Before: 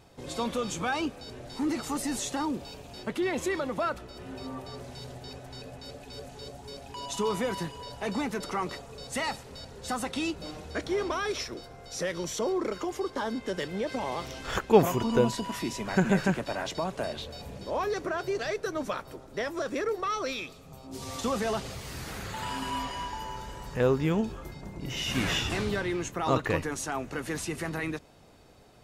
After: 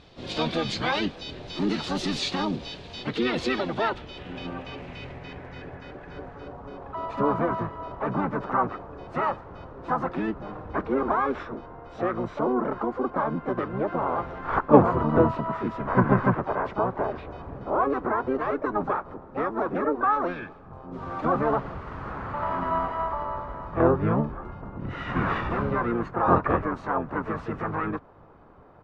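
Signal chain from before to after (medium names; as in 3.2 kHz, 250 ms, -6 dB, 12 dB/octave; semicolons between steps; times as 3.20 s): harmony voices -7 st -1 dB, +4 st -15 dB, +5 st -7 dB; low-pass sweep 3.9 kHz -> 1.2 kHz, 3.62–6.77 s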